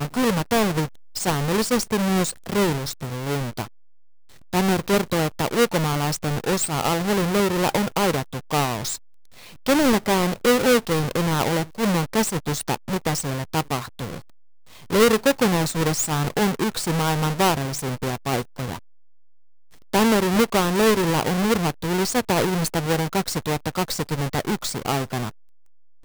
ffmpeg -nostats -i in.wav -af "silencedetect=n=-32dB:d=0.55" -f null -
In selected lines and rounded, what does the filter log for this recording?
silence_start: 3.65
silence_end: 4.53 | silence_duration: 0.88
silence_start: 8.96
silence_end: 9.66 | silence_duration: 0.70
silence_start: 14.18
silence_end: 14.90 | silence_duration: 0.72
silence_start: 18.77
silence_end: 19.93 | silence_duration: 1.17
silence_start: 25.29
silence_end: 26.04 | silence_duration: 0.75